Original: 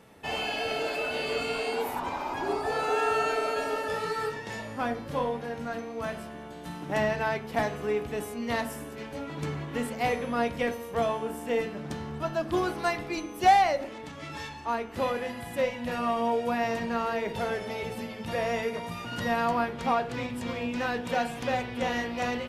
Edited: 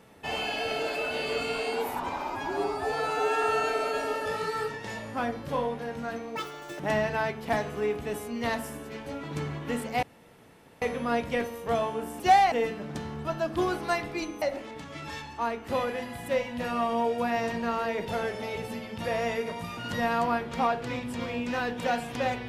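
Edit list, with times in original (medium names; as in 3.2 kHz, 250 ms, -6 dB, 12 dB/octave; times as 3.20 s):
2.30–3.05 s: stretch 1.5×
5.98–6.86 s: speed 199%
10.09 s: insert room tone 0.79 s
13.37–13.69 s: move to 11.47 s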